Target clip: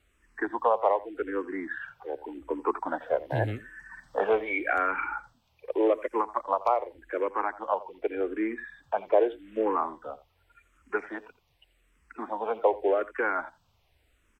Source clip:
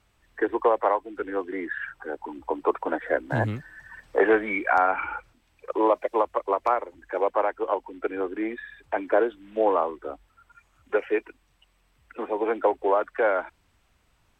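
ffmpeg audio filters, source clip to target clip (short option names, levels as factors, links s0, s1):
-filter_complex "[0:a]aecho=1:1:85:0.119,asplit=2[s0][s1];[s1]afreqshift=-0.85[s2];[s0][s2]amix=inputs=2:normalize=1"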